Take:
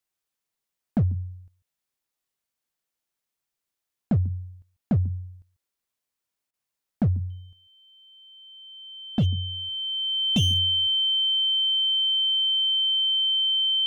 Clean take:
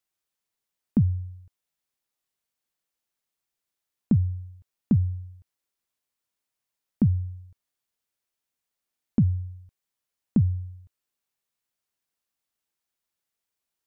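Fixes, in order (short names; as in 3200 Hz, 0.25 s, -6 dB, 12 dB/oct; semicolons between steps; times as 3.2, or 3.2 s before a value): clip repair -17 dBFS; notch 3100 Hz, Q 30; interpolate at 6.51, 25 ms; inverse comb 0.144 s -21 dB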